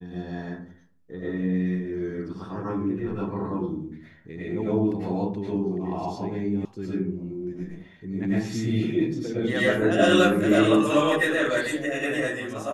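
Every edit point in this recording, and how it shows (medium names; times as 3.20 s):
6.65 s: sound stops dead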